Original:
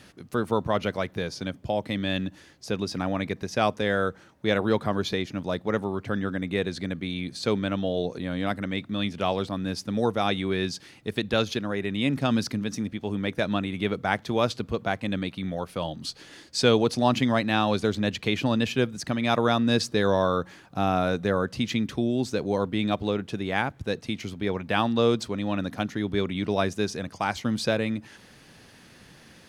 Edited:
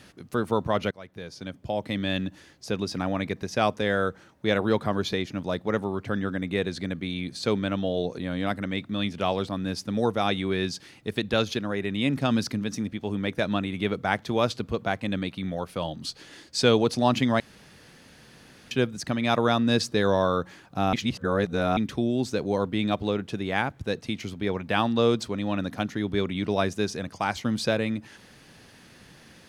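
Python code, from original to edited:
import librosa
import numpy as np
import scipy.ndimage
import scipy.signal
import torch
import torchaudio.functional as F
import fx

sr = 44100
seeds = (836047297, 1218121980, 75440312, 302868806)

y = fx.edit(x, sr, fx.fade_in_from(start_s=0.91, length_s=1.05, floor_db=-21.0),
    fx.room_tone_fill(start_s=17.4, length_s=1.31),
    fx.reverse_span(start_s=20.93, length_s=0.84), tone=tone)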